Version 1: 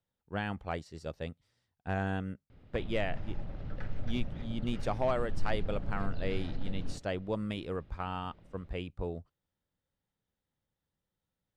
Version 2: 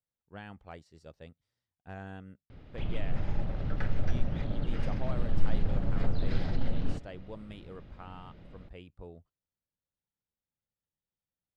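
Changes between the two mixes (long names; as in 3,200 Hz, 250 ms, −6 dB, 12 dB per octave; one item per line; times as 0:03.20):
speech −10.5 dB
background +7.5 dB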